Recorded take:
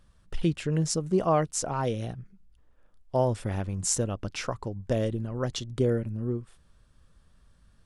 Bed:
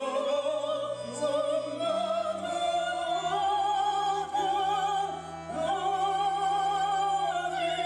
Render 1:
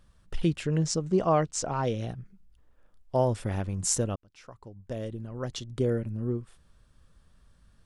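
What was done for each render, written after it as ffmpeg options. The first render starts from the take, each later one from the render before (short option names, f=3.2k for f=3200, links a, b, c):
-filter_complex "[0:a]asettb=1/sr,asplit=3[a][b][c];[a]atrim=end=0.724[d];[b]atrim=start=0.72:end=2.08,asetpts=PTS-STARTPTS,afade=t=in:d=0.004:c=qsin,afade=t=out:st=1.356:d=0.004:c=qsin,lowpass=f=7.9k:w=0.5412,lowpass=f=7.9k:w=1.3066[e];[c]atrim=start=2.076[f];[d][e]acrossfade=d=0.004:c1=hsin:c2=qsin[g];[g][f]acrossfade=d=0.004:c1=qsin:c2=hsin,asplit=2[h][i];[h]atrim=end=4.16,asetpts=PTS-STARTPTS,afade=t=out:st=4.156:d=0.004:c=hsin[j];[i]atrim=start=4.16,asetpts=PTS-STARTPTS,afade=t=in:d=2.1[k];[j][k]concat=n=2:v=0:a=1"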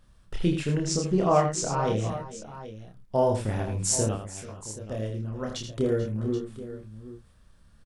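-filter_complex "[0:a]asplit=2[a][b];[b]adelay=28,volume=-3dB[c];[a][c]amix=inputs=2:normalize=0,asplit=2[d][e];[e]aecho=0:1:80|435|448|779:0.422|0.112|0.119|0.2[f];[d][f]amix=inputs=2:normalize=0"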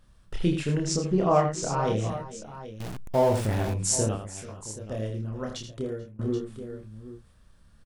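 -filter_complex "[0:a]asettb=1/sr,asplit=3[a][b][c];[a]atrim=end=0.964[d];[b]atrim=start=0.96:end=1.63,asetpts=PTS-STARTPTS,afade=t=in:d=0.004:c=qsin,afade=t=out:st=0.666:d=0.004:c=qsin,lowpass=f=4k:p=1[e];[c]atrim=start=1.626[f];[d][e]acrossfade=d=0.004:c1=hsin:c2=qsin[g];[g][f]acrossfade=d=0.004:c1=qsin:c2=hsin,asettb=1/sr,asplit=3[h][i][j];[h]atrim=end=2.804[k];[i]atrim=start=2.8:end=3.74,asetpts=PTS-STARTPTS,afade=t=in:d=0.004:c=qsin,afade=t=out:st=0.936:d=0.004:c=qsin,aeval=exprs='val(0)+0.5*0.0282*sgn(val(0))':c=same[l];[j]atrim=start=3.736[m];[k][l]acrossfade=d=0.004:c1=hsin:c2=qsin[n];[n][m]acrossfade=d=0.004:c1=qsin:c2=hsin,asplit=2[o][p];[o]atrim=end=6.19,asetpts=PTS-STARTPTS,afade=t=out:st=5.37:d=0.82:silence=0.0794328[q];[p]atrim=start=6.19,asetpts=PTS-STARTPTS,afade=t=in:d=0.004:c=hsin:silence=0.0794328[r];[q][r]concat=n=2:v=0:a=1"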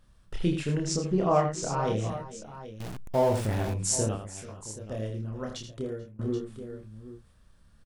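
-af "volume=-2dB"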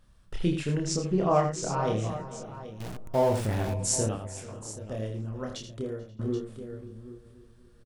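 -filter_complex "[0:a]asplit=2[a][b];[b]adelay=532,lowpass=f=1.3k:p=1,volume=-16.5dB,asplit=2[c][d];[d]adelay=532,lowpass=f=1.3k:p=1,volume=0.4,asplit=2[e][f];[f]adelay=532,lowpass=f=1.3k:p=1,volume=0.4[g];[a][c][e][g]amix=inputs=4:normalize=0"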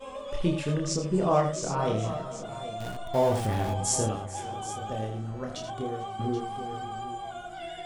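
-filter_complex "[1:a]volume=-9.5dB[a];[0:a][a]amix=inputs=2:normalize=0"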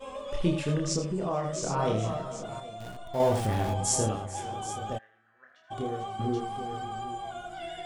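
-filter_complex "[0:a]asettb=1/sr,asplit=3[a][b][c];[a]atrim=end=1.024[d];[b]atrim=start=1.02:end=1.55,asetpts=PTS-STARTPTS,afade=t=in:d=0.004:c=qsin,afade=t=out:st=0.526:d=0.004:c=qsin,acompressor=threshold=-29dB:ratio=2.5:attack=3.2:release=140:knee=1:detection=peak[e];[c]atrim=start=1.546[f];[d][e]acrossfade=d=0.004:c1=hsin:c2=qsin[g];[g][f]acrossfade=d=0.004:c1=qsin:c2=hsin,asplit=3[h][i][j];[h]afade=t=out:st=4.97:d=0.02[k];[i]bandpass=f=1.7k:t=q:w=10,afade=t=in:st=4.97:d=0.02,afade=t=out:st=5.7:d=0.02[l];[j]afade=t=in:st=5.7:d=0.02[m];[k][l][m]amix=inputs=3:normalize=0,asplit=3[n][o][p];[n]atrim=end=2.602[q];[o]atrim=start=2.598:end=3.202,asetpts=PTS-STARTPTS,volume=-5.5dB[r];[p]atrim=start=3.198[s];[q][r]acrossfade=d=0.004:c1=hsin:c2=hsin[t];[t][s]acrossfade=d=0.004:c1=hsin:c2=hsin"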